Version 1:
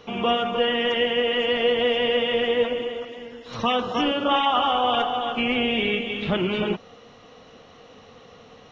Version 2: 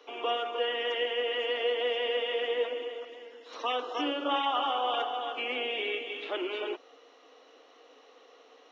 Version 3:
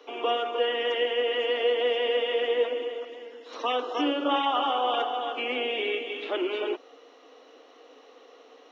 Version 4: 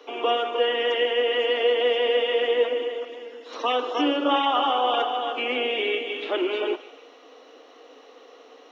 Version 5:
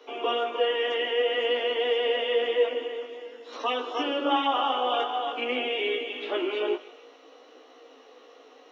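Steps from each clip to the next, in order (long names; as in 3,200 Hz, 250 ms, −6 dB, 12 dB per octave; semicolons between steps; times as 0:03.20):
Butterworth high-pass 270 Hz 96 dB per octave; level −8 dB
low-shelf EQ 450 Hz +6.5 dB; level +2 dB
feedback echo with a high-pass in the loop 152 ms, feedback 54%, high-pass 1,000 Hz, level −15 dB; level +3.5 dB
chorus effect 0.51 Hz, delay 15 ms, depth 4.6 ms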